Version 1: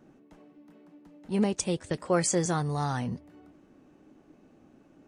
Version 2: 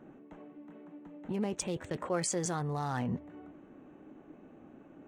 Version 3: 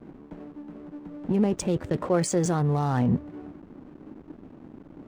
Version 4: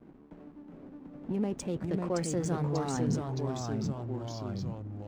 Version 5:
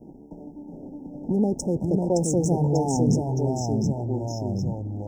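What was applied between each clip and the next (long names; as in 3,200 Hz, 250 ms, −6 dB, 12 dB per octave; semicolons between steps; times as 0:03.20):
adaptive Wiener filter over 9 samples; low-shelf EQ 140 Hz −6.5 dB; in parallel at +2 dB: compressor whose output falls as the input rises −36 dBFS, ratio −0.5; on the sum: level −7 dB
tilt shelving filter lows +4.5 dB, about 750 Hz; slack as between gear wheels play −48 dBFS; level +7.5 dB
delay with pitch and tempo change per echo 371 ms, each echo −2 semitones, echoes 3; level −8.5 dB
linear-phase brick-wall band-stop 950–5,100 Hz; level +9 dB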